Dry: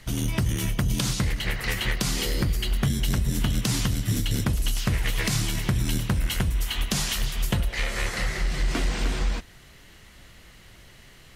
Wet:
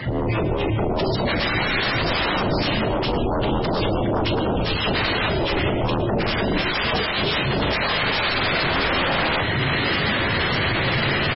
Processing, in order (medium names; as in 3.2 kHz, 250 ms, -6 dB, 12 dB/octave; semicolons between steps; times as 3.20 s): fade-in on the opening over 1.88 s; high-pass 100 Hz 24 dB/octave; spectral gate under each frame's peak -15 dB strong; low-pass 1.9 kHz 6 dB/octave; peaking EQ 180 Hz -7.5 dB 0.27 oct; in parallel at 0 dB: upward compressor, threshold -34 dBFS; on the sum: peak limiter -21 dBFS, peak gain reduction 10 dB; reverse; compression 5:1, threshold -36 dBFS, peak gain reduction 11 dB; reverse; sine folder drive 17 dB, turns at -25.5 dBFS; doubling 37 ms -8 dB; reverberation RT60 0.55 s, pre-delay 106 ms, DRR 9 dB; trim +6.5 dB; MP3 16 kbps 22.05 kHz